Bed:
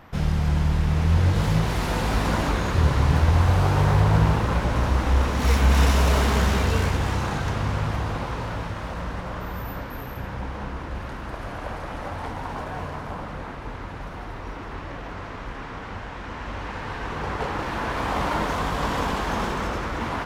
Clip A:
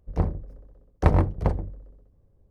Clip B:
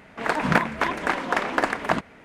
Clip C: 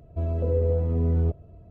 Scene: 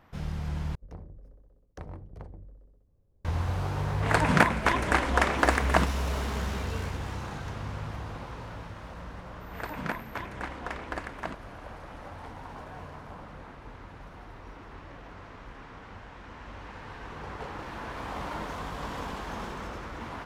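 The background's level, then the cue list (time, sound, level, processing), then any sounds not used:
bed -11 dB
0.75 s: replace with A -7 dB + compression 3:1, threshold -36 dBFS
3.85 s: add B -1 dB + peaking EQ 9.1 kHz +6 dB 1.1 oct
9.34 s: add B -13.5 dB
not used: C

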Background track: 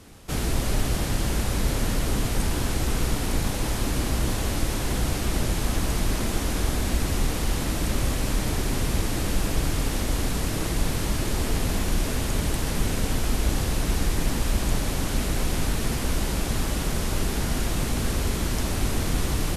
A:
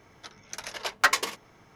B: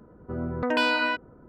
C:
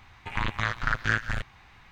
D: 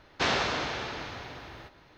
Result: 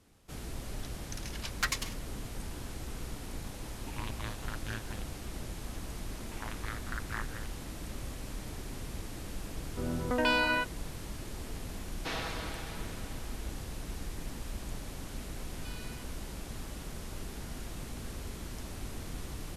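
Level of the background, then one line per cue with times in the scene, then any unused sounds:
background track -16 dB
0.59 s: add A + amplifier tone stack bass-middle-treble 5-5-5
3.61 s: add C -10.5 dB + high-order bell 1.6 kHz -8 dB 1 oct
6.05 s: add C -14 dB + loudspeaker Doppler distortion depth 0.42 ms
9.48 s: add B -4 dB
11.85 s: add D -12 dB + comb 6.2 ms, depth 71%
14.88 s: add B -16.5 dB + differentiator

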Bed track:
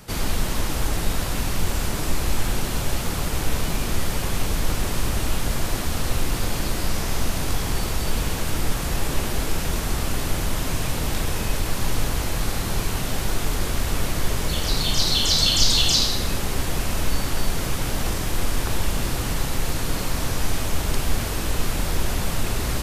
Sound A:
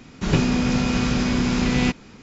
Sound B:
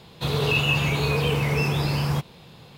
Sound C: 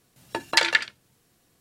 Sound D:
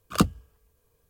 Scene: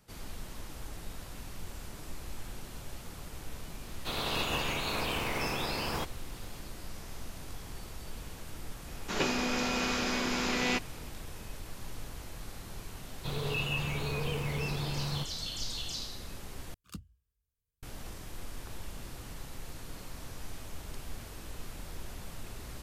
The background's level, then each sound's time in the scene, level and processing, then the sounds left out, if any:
bed track -19.5 dB
3.84 s: add B -11 dB + spectral peaks clipped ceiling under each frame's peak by 20 dB
8.87 s: add A -4 dB + high-pass 410 Hz
13.03 s: add B -11.5 dB
16.74 s: replace with D -6 dB + amplifier tone stack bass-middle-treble 6-0-2
not used: C

